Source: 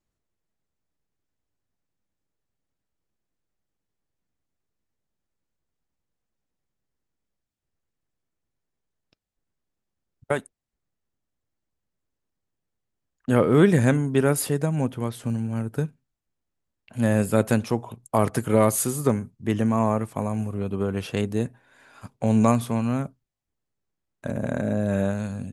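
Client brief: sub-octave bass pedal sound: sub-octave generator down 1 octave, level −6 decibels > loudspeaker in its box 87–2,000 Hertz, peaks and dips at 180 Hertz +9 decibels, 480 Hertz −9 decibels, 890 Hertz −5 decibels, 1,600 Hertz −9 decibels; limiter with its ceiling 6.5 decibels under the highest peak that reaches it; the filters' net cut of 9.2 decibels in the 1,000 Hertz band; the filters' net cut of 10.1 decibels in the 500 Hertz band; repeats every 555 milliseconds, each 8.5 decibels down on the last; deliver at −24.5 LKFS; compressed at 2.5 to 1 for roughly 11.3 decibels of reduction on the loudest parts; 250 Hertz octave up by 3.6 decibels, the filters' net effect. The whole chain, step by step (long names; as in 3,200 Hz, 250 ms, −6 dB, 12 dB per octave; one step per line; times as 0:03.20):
parametric band 250 Hz +3 dB
parametric band 500 Hz −8 dB
parametric band 1,000 Hz −5.5 dB
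downward compressor 2.5 to 1, threshold −32 dBFS
brickwall limiter −22.5 dBFS
repeating echo 555 ms, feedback 38%, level −8.5 dB
sub-octave generator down 1 octave, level −6 dB
loudspeaker in its box 87–2,000 Hz, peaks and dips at 180 Hz +9 dB, 480 Hz −9 dB, 890 Hz −5 dB, 1,600 Hz −9 dB
level +8 dB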